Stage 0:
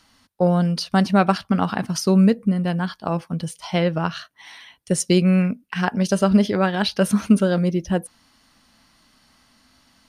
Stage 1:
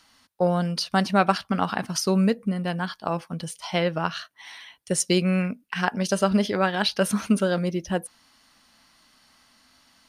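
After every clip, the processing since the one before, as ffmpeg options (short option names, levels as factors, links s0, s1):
-af "lowshelf=f=370:g=-8"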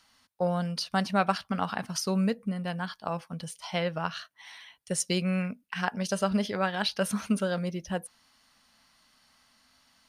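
-af "equalizer=f=330:w=2.9:g=-6.5,volume=0.562"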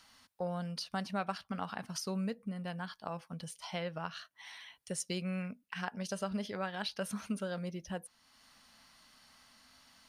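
-af "acompressor=threshold=0.00141:ratio=1.5,volume=1.26"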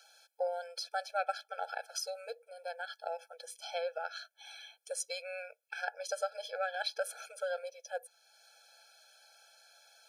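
-af "afftfilt=real='re*eq(mod(floor(b*sr/1024/440),2),1)':imag='im*eq(mod(floor(b*sr/1024/440),2),1)':win_size=1024:overlap=0.75,volume=1.68"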